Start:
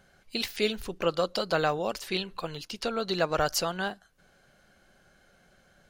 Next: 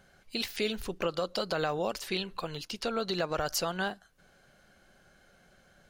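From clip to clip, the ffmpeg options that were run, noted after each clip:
-af "alimiter=limit=-20dB:level=0:latency=1:release=98"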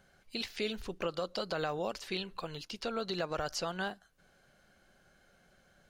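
-filter_complex "[0:a]acrossover=split=7600[a][b];[b]acompressor=threshold=-57dB:ratio=4:attack=1:release=60[c];[a][c]amix=inputs=2:normalize=0,volume=-4dB"

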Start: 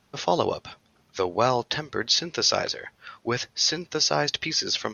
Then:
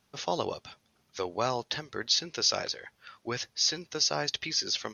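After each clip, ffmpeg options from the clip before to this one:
-af "highshelf=f=3.8k:g=6.5,volume=-8dB"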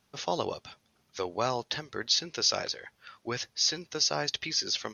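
-af anull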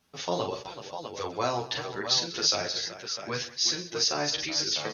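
-filter_complex "[0:a]asplit=2[a][b];[b]aecho=0:1:41|128|191|378|651:0.447|0.119|0.106|0.251|0.376[c];[a][c]amix=inputs=2:normalize=0,asplit=2[d][e];[e]adelay=9.5,afreqshift=0.83[f];[d][f]amix=inputs=2:normalize=1,volume=3.5dB"

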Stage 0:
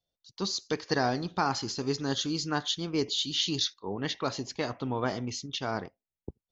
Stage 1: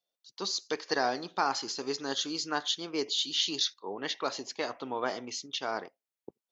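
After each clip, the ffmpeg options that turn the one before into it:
-af "highpass=380"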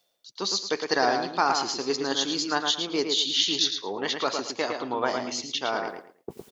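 -filter_complex "[0:a]areverse,acompressor=mode=upward:threshold=-35dB:ratio=2.5,areverse,tremolo=f=110:d=0.182,asplit=2[a][b];[b]adelay=110,lowpass=f=4.4k:p=1,volume=-5dB,asplit=2[c][d];[d]adelay=110,lowpass=f=4.4k:p=1,volume=0.26,asplit=2[e][f];[f]adelay=110,lowpass=f=4.4k:p=1,volume=0.26[g];[a][c][e][g]amix=inputs=4:normalize=0,volume=6dB"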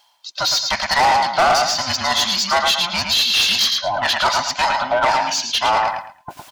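-filter_complex "[0:a]afftfilt=real='real(if(between(b,1,1008),(2*floor((b-1)/24)+1)*24-b,b),0)':imag='imag(if(between(b,1,1008),(2*floor((b-1)/24)+1)*24-b,b),0)*if(between(b,1,1008),-1,1)':win_size=2048:overlap=0.75,lowshelf=f=510:t=q:w=3:g=-6,asplit=2[a][b];[b]highpass=f=720:p=1,volume=22dB,asoftclip=type=tanh:threshold=-7dB[c];[a][c]amix=inputs=2:normalize=0,lowpass=f=5.2k:p=1,volume=-6dB"

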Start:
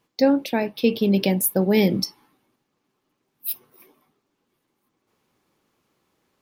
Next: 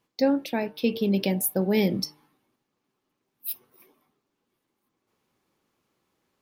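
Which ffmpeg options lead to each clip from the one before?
-af "bandreject=f=151:t=h:w=4,bandreject=f=302:t=h:w=4,bandreject=f=453:t=h:w=4,bandreject=f=604:t=h:w=4,bandreject=f=755:t=h:w=4,bandreject=f=906:t=h:w=4,bandreject=f=1.057k:t=h:w=4,bandreject=f=1.208k:t=h:w=4,bandreject=f=1.359k:t=h:w=4,bandreject=f=1.51k:t=h:w=4,bandreject=f=1.661k:t=h:w=4,bandreject=f=1.812k:t=h:w=4,volume=-4.5dB"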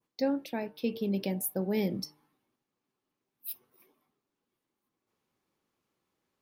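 -af "adynamicequalizer=threshold=0.00447:dfrequency=3200:dqfactor=0.87:tfrequency=3200:tqfactor=0.87:attack=5:release=100:ratio=0.375:range=2:mode=cutabove:tftype=bell,volume=-7dB"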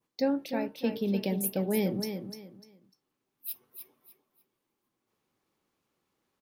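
-af "aecho=1:1:299|598|897:0.398|0.104|0.0269,volume=1.5dB"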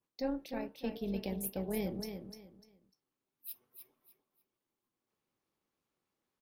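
-af "tremolo=f=250:d=0.519,volume=-5.5dB"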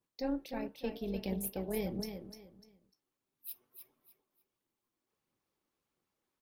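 -af "aphaser=in_gain=1:out_gain=1:delay=3.5:decay=0.28:speed=1.5:type=triangular"

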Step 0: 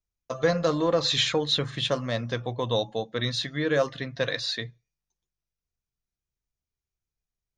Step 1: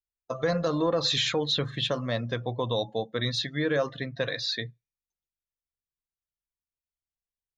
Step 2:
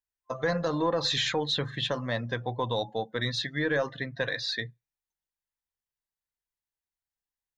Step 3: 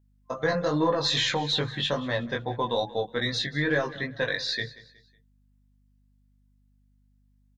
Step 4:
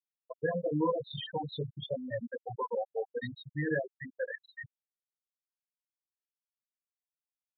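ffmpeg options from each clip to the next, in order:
-af "afftdn=nr=13:nf=-42,alimiter=limit=-16.5dB:level=0:latency=1:release=45"
-af "superequalizer=9b=1.78:11b=1.78,aeval=exprs='0.2*(cos(1*acos(clip(val(0)/0.2,-1,1)))-cos(1*PI/2))+0.00316*(cos(4*acos(clip(val(0)/0.2,-1,1)))-cos(4*PI/2))':c=same,volume=-2dB"
-af "flanger=delay=19:depth=2.3:speed=2.4,aeval=exprs='val(0)+0.000398*(sin(2*PI*50*n/s)+sin(2*PI*2*50*n/s)/2+sin(2*PI*3*50*n/s)/3+sin(2*PI*4*50*n/s)/4+sin(2*PI*5*50*n/s)/5)':c=same,aecho=1:1:184|368|552:0.112|0.0415|0.0154,volume=5.5dB"
-af "afftfilt=real='re*gte(hypot(re,im),0.2)':imag='im*gte(hypot(re,im),0.2)':win_size=1024:overlap=0.75,aemphasis=mode=reproduction:type=75kf,aresample=8000,aresample=44100,volume=-4.5dB"

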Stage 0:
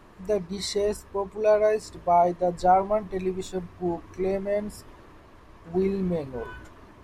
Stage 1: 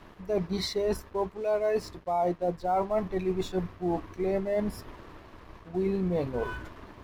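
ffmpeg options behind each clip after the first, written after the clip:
-af "equalizer=f=8.1k:w=1.8:g=-14.5,areverse,acompressor=threshold=-30dB:ratio=6,areverse,aeval=exprs='sgn(val(0))*max(abs(val(0))-0.00141,0)':c=same,volume=5dB"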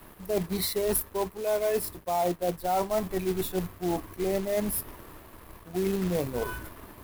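-filter_complex "[0:a]acrossover=split=260|1600[a][b][c];[c]aexciter=amount=9:drive=7.8:freq=9k[d];[a][b][d]amix=inputs=3:normalize=0,acrusher=bits=3:mode=log:mix=0:aa=0.000001"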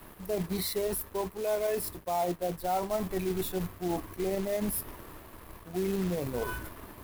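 -af "alimiter=limit=-23.5dB:level=0:latency=1:release=24"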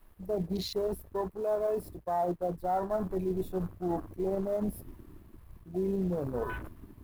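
-af "afwtdn=0.0112"

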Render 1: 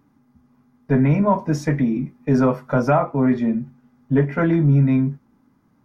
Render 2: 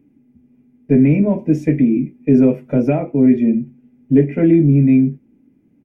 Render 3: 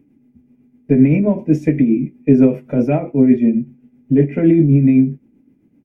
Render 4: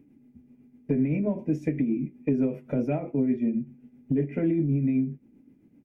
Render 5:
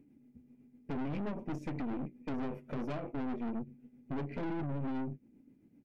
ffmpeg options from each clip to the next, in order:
-af "firequalizer=gain_entry='entry(110,0);entry(310,9);entry(1100,-20);entry(2400,5);entry(4100,-14);entry(7700,-6)':delay=0.05:min_phase=1"
-af "tremolo=f=7.8:d=0.48,volume=2.5dB"
-af "acompressor=threshold=-24dB:ratio=2.5,volume=-3dB"
-af "aeval=exprs='(tanh(44.7*val(0)+0.65)-tanh(0.65))/44.7':c=same,volume=-2dB"

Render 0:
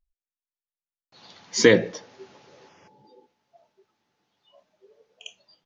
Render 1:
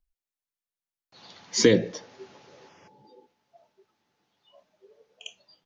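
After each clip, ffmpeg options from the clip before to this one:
-filter_complex "[0:a]acrossover=split=490|3000[a][b][c];[b]acompressor=threshold=-33dB:ratio=3[d];[a][d][c]amix=inputs=3:normalize=0"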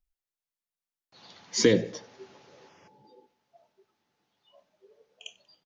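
-af "aecho=1:1:94|188|282:0.0668|0.0274|0.0112,volume=-2.5dB"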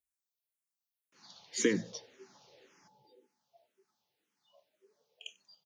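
-filter_complex "[0:a]highpass=110,highshelf=f=4k:g=11.5,asplit=2[a][b];[b]afreqshift=-1.9[c];[a][c]amix=inputs=2:normalize=1,volume=-6dB"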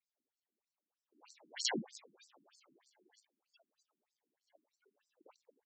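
-af "acrusher=samples=28:mix=1:aa=0.000001:lfo=1:lforange=16.8:lforate=0.74,crystalizer=i=2.5:c=0,afftfilt=real='re*between(b*sr/1024,240*pow(6100/240,0.5+0.5*sin(2*PI*3.2*pts/sr))/1.41,240*pow(6100/240,0.5+0.5*sin(2*PI*3.2*pts/sr))*1.41)':imag='im*between(b*sr/1024,240*pow(6100/240,0.5+0.5*sin(2*PI*3.2*pts/sr))/1.41,240*pow(6100/240,0.5+0.5*sin(2*PI*3.2*pts/sr))*1.41)':win_size=1024:overlap=0.75,volume=1dB"

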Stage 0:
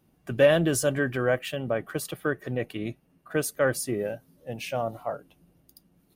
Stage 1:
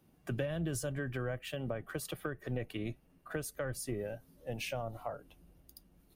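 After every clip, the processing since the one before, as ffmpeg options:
-filter_complex "[0:a]asubboost=boost=4.5:cutoff=65,acrossover=split=140[a][b];[b]acompressor=threshold=-34dB:ratio=10[c];[a][c]amix=inputs=2:normalize=0,volume=-1.5dB"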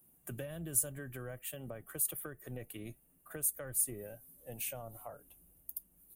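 -af "aexciter=amount=9.3:drive=6.3:freq=7.4k,volume=-7.5dB"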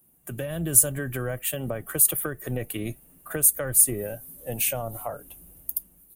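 -af "dynaudnorm=f=120:g=7:m=10.5dB,volume=4dB"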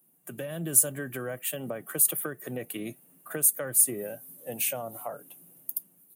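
-af "highpass=f=150:w=0.5412,highpass=f=150:w=1.3066,asoftclip=type=hard:threshold=-4dB,volume=-3.5dB"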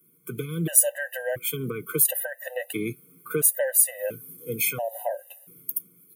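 -af "equalizer=f=125:t=o:w=1:g=3,equalizer=f=250:t=o:w=1:g=-5,equalizer=f=500:t=o:w=1:g=5,equalizer=f=1k:t=o:w=1:g=-6,equalizer=f=2k:t=o:w=1:g=5,equalizer=f=8k:t=o:w=1:g=-5,afftfilt=real='re*gt(sin(2*PI*0.73*pts/sr)*(1-2*mod(floor(b*sr/1024/510),2)),0)':imag='im*gt(sin(2*PI*0.73*pts/sr)*(1-2*mod(floor(b*sr/1024/510),2)),0)':win_size=1024:overlap=0.75,volume=8dB"

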